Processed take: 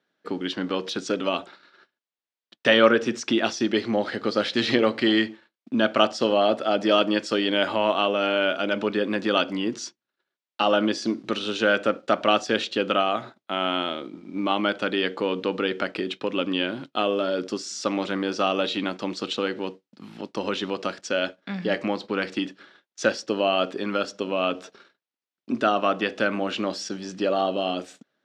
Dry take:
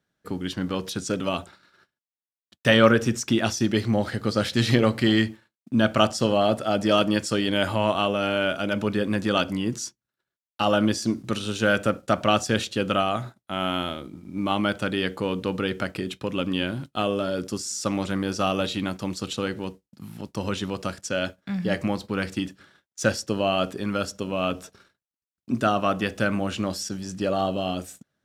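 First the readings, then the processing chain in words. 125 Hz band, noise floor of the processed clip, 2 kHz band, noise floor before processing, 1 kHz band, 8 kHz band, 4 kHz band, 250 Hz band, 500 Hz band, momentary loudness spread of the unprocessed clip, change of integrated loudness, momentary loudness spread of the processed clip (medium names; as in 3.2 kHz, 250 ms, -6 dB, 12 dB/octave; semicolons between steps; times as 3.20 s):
-10.0 dB, under -85 dBFS, +1.5 dB, under -85 dBFS, +1.0 dB, -5.5 dB, +2.0 dB, -1.5 dB, +1.5 dB, 10 LU, +0.5 dB, 10 LU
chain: Chebyshev band-pass 310–4000 Hz, order 2; in parallel at -2.5 dB: compression, threshold -30 dBFS, peak gain reduction 17 dB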